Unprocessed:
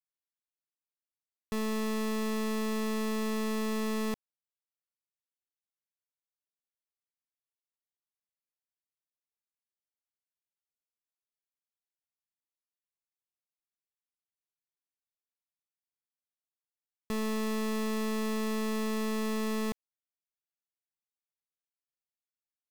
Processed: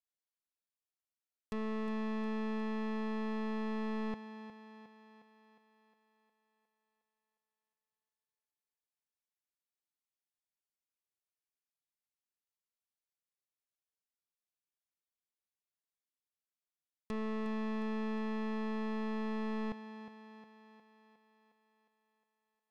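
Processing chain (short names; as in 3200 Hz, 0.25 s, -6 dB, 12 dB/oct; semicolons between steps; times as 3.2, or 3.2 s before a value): treble ducked by the level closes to 2300 Hz; on a send: thinning echo 0.359 s, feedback 60%, high-pass 170 Hz, level -10 dB; on the sum: gain -5 dB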